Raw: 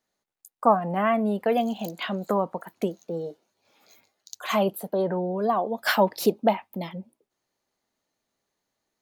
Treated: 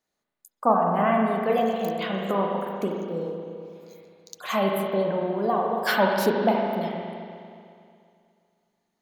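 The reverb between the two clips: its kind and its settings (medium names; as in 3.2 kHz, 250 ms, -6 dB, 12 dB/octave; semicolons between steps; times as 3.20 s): spring tank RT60 2.4 s, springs 36/40 ms, chirp 35 ms, DRR -0.5 dB; trim -2 dB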